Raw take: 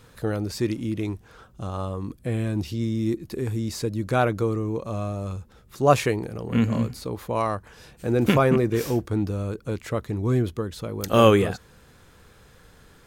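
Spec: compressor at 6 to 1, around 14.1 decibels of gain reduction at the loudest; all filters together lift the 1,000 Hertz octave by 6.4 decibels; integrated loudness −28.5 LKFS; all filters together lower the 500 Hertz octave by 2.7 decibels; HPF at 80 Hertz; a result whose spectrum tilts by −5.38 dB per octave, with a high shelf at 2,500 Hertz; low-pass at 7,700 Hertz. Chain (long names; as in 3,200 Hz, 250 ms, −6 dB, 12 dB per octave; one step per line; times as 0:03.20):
high-pass filter 80 Hz
low-pass filter 7,700 Hz
parametric band 500 Hz −6 dB
parametric band 1,000 Hz +8.5 dB
high-shelf EQ 2,500 Hz +7.5 dB
downward compressor 6 to 1, threshold −24 dBFS
level +2 dB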